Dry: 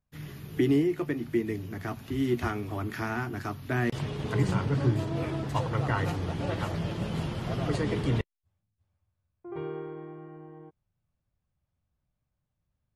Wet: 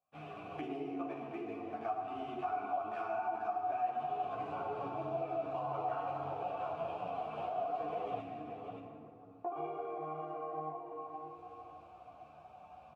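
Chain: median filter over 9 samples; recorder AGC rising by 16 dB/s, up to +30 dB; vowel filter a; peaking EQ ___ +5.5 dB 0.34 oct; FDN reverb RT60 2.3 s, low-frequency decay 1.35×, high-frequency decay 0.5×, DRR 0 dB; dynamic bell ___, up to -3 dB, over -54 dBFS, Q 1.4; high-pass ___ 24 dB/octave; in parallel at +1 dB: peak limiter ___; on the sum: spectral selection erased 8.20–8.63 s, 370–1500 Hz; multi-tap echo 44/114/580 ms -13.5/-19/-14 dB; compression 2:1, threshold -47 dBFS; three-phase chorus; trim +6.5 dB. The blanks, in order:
720 Hz, 280 Hz, 48 Hz, -31 dBFS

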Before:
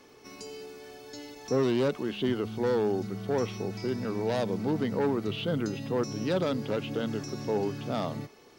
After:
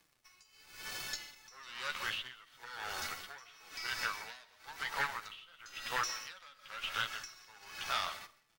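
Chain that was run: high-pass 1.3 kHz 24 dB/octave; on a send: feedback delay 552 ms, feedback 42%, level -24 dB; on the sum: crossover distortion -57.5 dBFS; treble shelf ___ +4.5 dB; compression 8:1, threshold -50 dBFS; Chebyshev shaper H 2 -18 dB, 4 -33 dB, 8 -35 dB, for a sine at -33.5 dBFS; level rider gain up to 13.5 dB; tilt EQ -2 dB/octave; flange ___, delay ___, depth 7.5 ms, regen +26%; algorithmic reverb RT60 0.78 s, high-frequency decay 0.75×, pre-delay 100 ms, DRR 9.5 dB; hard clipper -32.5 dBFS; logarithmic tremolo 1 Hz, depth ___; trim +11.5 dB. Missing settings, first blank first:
5.9 kHz, 0.82 Hz, 5.8 ms, 22 dB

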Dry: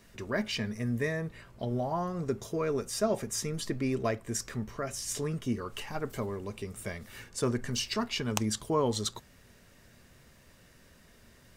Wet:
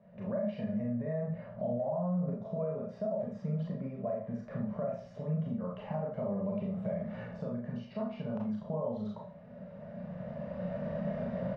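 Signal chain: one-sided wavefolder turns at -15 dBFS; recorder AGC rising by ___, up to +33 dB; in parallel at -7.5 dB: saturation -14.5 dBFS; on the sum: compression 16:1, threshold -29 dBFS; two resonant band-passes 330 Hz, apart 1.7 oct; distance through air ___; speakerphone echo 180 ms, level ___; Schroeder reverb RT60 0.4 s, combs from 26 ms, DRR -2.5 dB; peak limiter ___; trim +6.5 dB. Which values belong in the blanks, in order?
11 dB/s, 240 m, -29 dB, -32 dBFS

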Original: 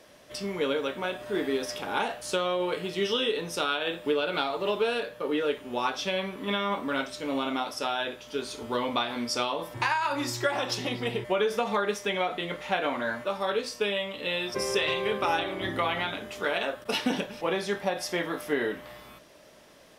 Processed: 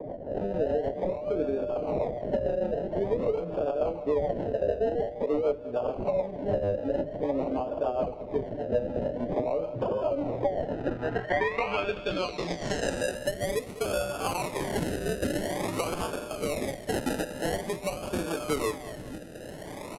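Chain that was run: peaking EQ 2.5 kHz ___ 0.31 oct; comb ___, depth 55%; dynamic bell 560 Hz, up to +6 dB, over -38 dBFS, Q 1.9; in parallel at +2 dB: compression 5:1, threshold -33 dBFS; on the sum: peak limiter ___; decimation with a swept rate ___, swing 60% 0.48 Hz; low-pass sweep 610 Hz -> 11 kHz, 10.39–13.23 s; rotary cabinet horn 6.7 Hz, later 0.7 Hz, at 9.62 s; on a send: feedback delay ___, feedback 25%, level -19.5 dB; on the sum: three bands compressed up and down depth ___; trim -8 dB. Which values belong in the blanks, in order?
+11 dB, 6.7 ms, -10 dBFS, 31×, 199 ms, 70%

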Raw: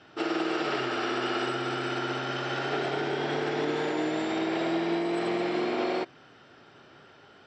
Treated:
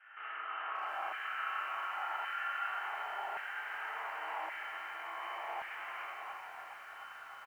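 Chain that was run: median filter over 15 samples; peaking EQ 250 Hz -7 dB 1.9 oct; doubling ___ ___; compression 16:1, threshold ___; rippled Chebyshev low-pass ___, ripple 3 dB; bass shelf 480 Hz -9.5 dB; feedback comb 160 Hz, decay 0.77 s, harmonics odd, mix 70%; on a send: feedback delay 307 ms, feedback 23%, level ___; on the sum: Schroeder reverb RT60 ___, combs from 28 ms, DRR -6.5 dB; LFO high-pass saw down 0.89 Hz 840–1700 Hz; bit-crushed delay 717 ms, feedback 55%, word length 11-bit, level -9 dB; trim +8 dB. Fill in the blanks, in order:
21 ms, -7 dB, -41 dBFS, 3.1 kHz, -5.5 dB, 1.4 s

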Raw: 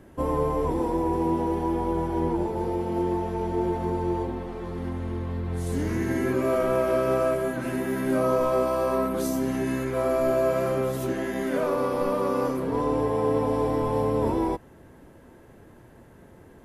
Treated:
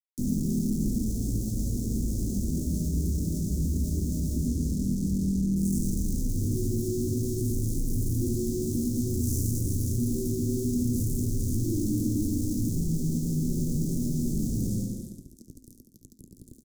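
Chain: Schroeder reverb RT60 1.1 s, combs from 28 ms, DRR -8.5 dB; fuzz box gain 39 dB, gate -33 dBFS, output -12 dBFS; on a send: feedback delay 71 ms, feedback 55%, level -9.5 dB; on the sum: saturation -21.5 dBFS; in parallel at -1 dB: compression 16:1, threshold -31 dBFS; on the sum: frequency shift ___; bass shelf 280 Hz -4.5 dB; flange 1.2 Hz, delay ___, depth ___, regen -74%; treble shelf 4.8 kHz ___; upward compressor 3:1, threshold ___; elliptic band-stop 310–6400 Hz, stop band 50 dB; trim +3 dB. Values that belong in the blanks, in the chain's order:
-280 Hz, 7.8 ms, 4.4 ms, -6.5 dB, -38 dBFS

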